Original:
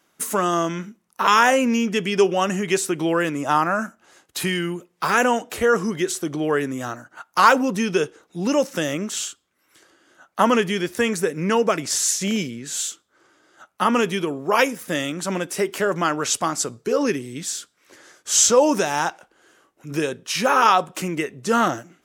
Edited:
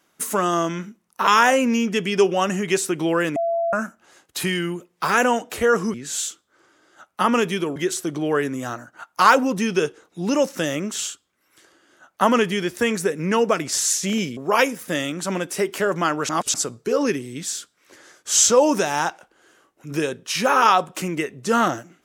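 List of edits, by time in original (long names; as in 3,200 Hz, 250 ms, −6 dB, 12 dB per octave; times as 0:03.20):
0:03.36–0:03.73: beep over 674 Hz −19 dBFS
0:12.55–0:14.37: move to 0:05.94
0:16.29–0:16.54: reverse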